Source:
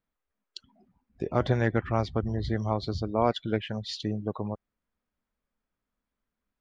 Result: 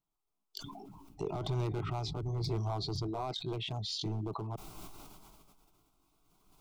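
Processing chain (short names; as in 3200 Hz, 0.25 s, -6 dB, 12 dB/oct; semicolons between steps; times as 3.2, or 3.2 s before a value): repeated pitch sweeps +2 st, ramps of 1.263 s; recorder AGC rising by 10 dB/s; limiter -18.5 dBFS, peak gain reduction 8 dB; hard clip -25 dBFS, distortion -12 dB; fixed phaser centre 350 Hz, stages 8; sustainer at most 25 dB/s; gain -1.5 dB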